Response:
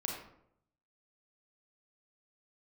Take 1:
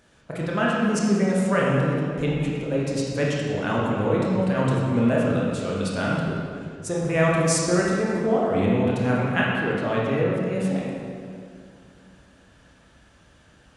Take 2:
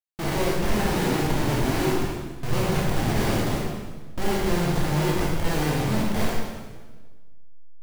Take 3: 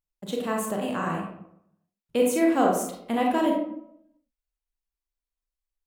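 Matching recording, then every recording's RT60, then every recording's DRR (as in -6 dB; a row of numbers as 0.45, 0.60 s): 3; 2.3, 1.4, 0.75 s; -5.0, -5.0, -1.0 dB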